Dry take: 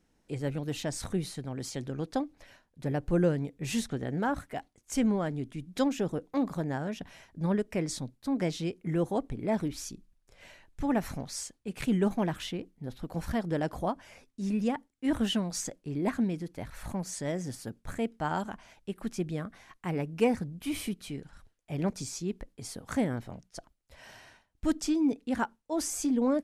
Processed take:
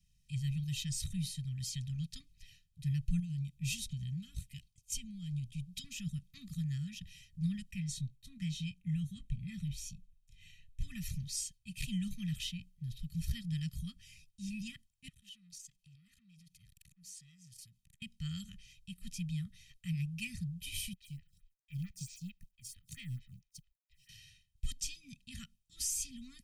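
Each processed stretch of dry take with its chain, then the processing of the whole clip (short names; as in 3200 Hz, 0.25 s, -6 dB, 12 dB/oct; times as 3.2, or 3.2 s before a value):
3.19–5.84 band shelf 1400 Hz -9 dB 1.1 oct + compressor, threshold -30 dBFS
7.71–10.82 high shelf 3800 Hz -6.5 dB + notch 4800 Hz, Q 6.8 + doubler 21 ms -13.5 dB
15.08–18.02 low shelf 290 Hz -9.5 dB + compressor 16:1, threshold -45 dBFS + core saturation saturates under 1300 Hz
20.93–24.09 G.711 law mismatch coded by A + bell 2000 Hz +4.5 dB 1.1 oct + photocell phaser 4.5 Hz
whole clip: Chebyshev band-stop 160–2700 Hz, order 3; band shelf 540 Hz -14 dB 1.1 oct; comb 1.6 ms, depth 97%; gain -2.5 dB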